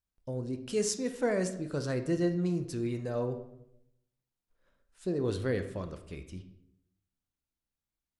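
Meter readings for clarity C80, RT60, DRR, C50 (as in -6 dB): 13.5 dB, 0.80 s, 7.0 dB, 11.0 dB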